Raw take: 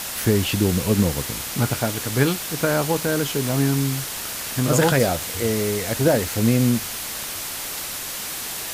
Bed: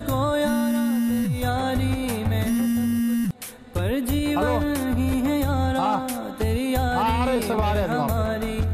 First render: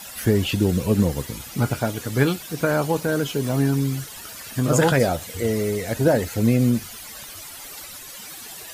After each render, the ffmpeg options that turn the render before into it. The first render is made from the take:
-af "afftdn=nr=13:nf=-31"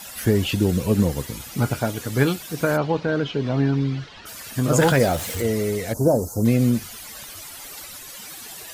-filter_complex "[0:a]asplit=3[a][b][c];[a]afade=t=out:st=2.76:d=0.02[d];[b]lowpass=f=4.3k:w=0.5412,lowpass=f=4.3k:w=1.3066,afade=t=in:st=2.76:d=0.02,afade=t=out:st=4.25:d=0.02[e];[c]afade=t=in:st=4.25:d=0.02[f];[d][e][f]amix=inputs=3:normalize=0,asettb=1/sr,asplit=3[g][h][i];[g]atrim=end=4.784[j];[h]atrim=start=4.78:end=5.42,asetpts=PTS-STARTPTS,afade=t=in:d=0.004:c=qsin,afade=t=out:st=0.636:d=0.004:c=qsin,aeval=exprs='val(0)+0.5*0.0355*sgn(val(0))':c=same[k];[i]atrim=start=5.416[l];[j][k]acrossfade=d=0.004:c1=hsin:c2=qsin[m];[m][l]acrossfade=d=0.004:c1=qsin:c2=hsin,asplit=3[n][o][p];[n]afade=t=out:st=5.92:d=0.02[q];[o]asuperstop=centerf=2500:order=8:qfactor=0.58,afade=t=in:st=5.92:d=0.02,afade=t=out:st=6.44:d=0.02[r];[p]afade=t=in:st=6.44:d=0.02[s];[q][r][s]amix=inputs=3:normalize=0"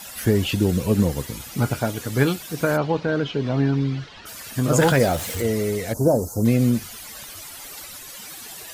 -af anull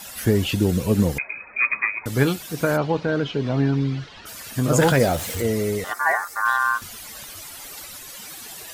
-filter_complex "[0:a]asettb=1/sr,asplit=3[a][b][c];[a]atrim=end=1.184[d];[b]atrim=start=1.18:end=2.06,asetpts=PTS-STARTPTS,afade=t=in:d=0.004:c=qsin,afade=t=out:st=0.876:d=0.004:c=qsin,lowpass=f=2.2k:t=q:w=0.5098,lowpass=f=2.2k:t=q:w=0.6013,lowpass=f=2.2k:t=q:w=0.9,lowpass=f=2.2k:t=q:w=2.563,afreqshift=-2600[e];[c]atrim=start=2.056[f];[d][e]acrossfade=d=0.004:c1=hsin:c2=qsin[g];[g][f]acrossfade=d=0.004:c1=qsin:c2=hsin,asettb=1/sr,asplit=3[h][i][j];[h]atrim=end=5.844[k];[i]atrim=start=5.84:end=6.82,asetpts=PTS-STARTPTS,afade=t=in:d=0.004:c=qsin,afade=t=out:st=0.976:d=0.004:c=qsin,aeval=exprs='val(0)*sin(2*PI*1300*n/s)':c=same[l];[j]atrim=start=6.816[m];[k][l]acrossfade=d=0.004:c1=hsin:c2=qsin[n];[n][m]acrossfade=d=0.004:c1=qsin:c2=hsin"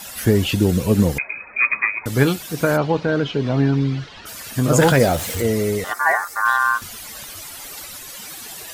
-af "volume=3dB"

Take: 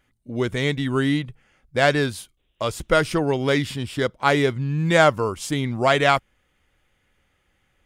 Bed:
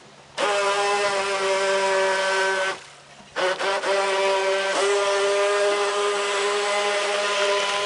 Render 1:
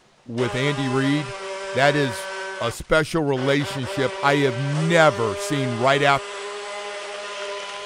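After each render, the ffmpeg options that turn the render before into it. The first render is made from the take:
-filter_complex "[1:a]volume=-9dB[a];[0:a][a]amix=inputs=2:normalize=0"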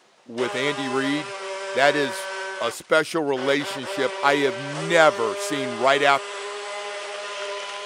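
-af "highpass=300"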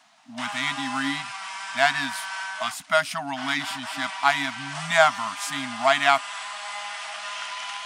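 -af "afftfilt=real='re*(1-between(b*sr/4096,280,620))':imag='im*(1-between(b*sr/4096,280,620))':win_size=4096:overlap=0.75,lowshelf=f=150:g=-9.5"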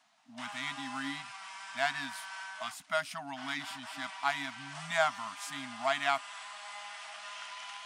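-af "volume=-11dB"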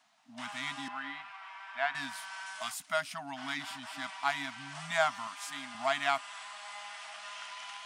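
-filter_complex "[0:a]asettb=1/sr,asplit=3[a][b][c];[a]atrim=end=0.884[d];[b]atrim=start=0.88:end=1.95,asetpts=PTS-STARTPTS,afade=t=in:d=0.004:c=qsin,afade=t=out:st=1.066:d=0.004:c=qsin,acrossover=split=410 3200:gain=0.2 1 0.0794[e][f][g];[e][f][g]amix=inputs=3:normalize=0[h];[c]atrim=start=1.946[i];[d][h]acrossfade=d=0.004:c1=hsin:c2=qsin[j];[j][i]acrossfade=d=0.004:c1=qsin:c2=hsin,asettb=1/sr,asplit=3[k][l][m];[k]atrim=end=2.464[n];[l]atrim=start=2.46:end=2.92,asetpts=PTS-STARTPTS,afade=t=in:d=0.004:c=qsin,afade=t=out:st=0.456:d=0.004:c=qsin,aemphasis=mode=production:type=cd[o];[m]atrim=start=2.916[p];[n][o]acrossfade=d=0.004:c1=hsin:c2=qsin[q];[q][p]acrossfade=d=0.004:c1=qsin:c2=hsin,asettb=1/sr,asplit=3[r][s][t];[r]atrim=end=5.274[u];[s]atrim=start=5.27:end=5.75,asetpts=PTS-STARTPTS,afade=t=in:d=0.004:c=qsin,afade=t=out:st=0.476:d=0.004:c=qsin,highpass=f=330:p=1[v];[t]atrim=start=5.746[w];[u][v]acrossfade=d=0.004:c1=hsin:c2=qsin[x];[x][w]acrossfade=d=0.004:c1=qsin:c2=hsin"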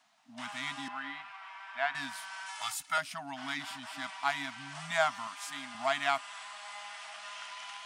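-filter_complex "[0:a]asettb=1/sr,asplit=3[a][b][c];[a]atrim=end=2.484[d];[b]atrim=start=2.48:end=2.98,asetpts=PTS-STARTPTS,afade=t=in:d=0.004:c=qsin,afade=t=out:st=0.496:d=0.004:c=qsin,aecho=1:1:2.3:0.93,atrim=end_sample=22050[e];[c]atrim=start=2.976[f];[d][e]acrossfade=d=0.004:c1=hsin:c2=qsin[g];[g][f]acrossfade=d=0.004:c1=qsin:c2=hsin"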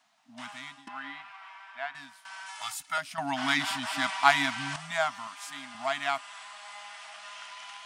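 -filter_complex "[0:a]asplit=5[a][b][c][d][e];[a]atrim=end=0.87,asetpts=PTS-STARTPTS,afade=t=out:st=0.41:d=0.46:silence=0.0944061[f];[b]atrim=start=0.87:end=2.25,asetpts=PTS-STARTPTS,afade=t=in:d=0.004:c=hsin:silence=0.0944061,afade=t=out:st=0.61:d=0.77:silence=0.149624[g];[c]atrim=start=2.25:end=3.182,asetpts=PTS-STARTPTS,afade=t=in:d=0.004:c=hsin:silence=0.149624[h];[d]atrim=start=3.178:end=4.762,asetpts=PTS-STARTPTS,volume=10.5dB[i];[e]atrim=start=4.758[j];[f][g][h]concat=n=3:v=0:a=1[k];[k][i]acrossfade=d=0.004:c1=hsin:c2=hsin[l];[l][j]acrossfade=d=0.004:c1=hsin:c2=hsin"

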